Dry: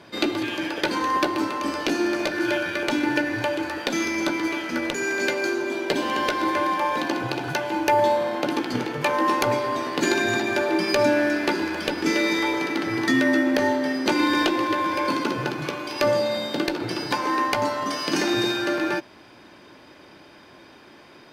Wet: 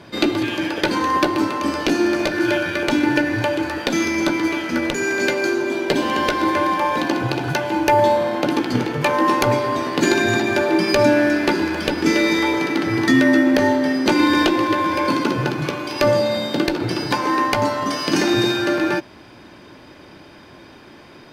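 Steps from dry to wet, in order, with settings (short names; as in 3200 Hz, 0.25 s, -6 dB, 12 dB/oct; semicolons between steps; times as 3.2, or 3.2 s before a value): low shelf 190 Hz +8.5 dB; gain +3.5 dB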